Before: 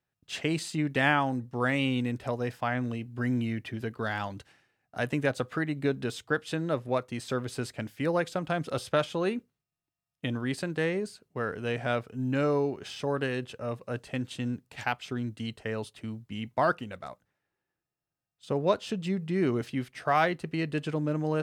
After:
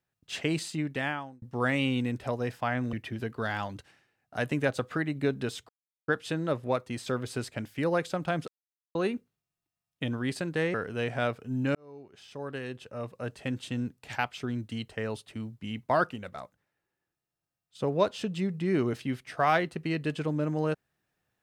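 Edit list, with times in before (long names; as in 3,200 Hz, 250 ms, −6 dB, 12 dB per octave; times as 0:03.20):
0:00.61–0:01.42: fade out
0:02.93–0:03.54: remove
0:06.30: splice in silence 0.39 s
0:08.70–0:09.17: silence
0:10.96–0:11.42: remove
0:12.43–0:14.22: fade in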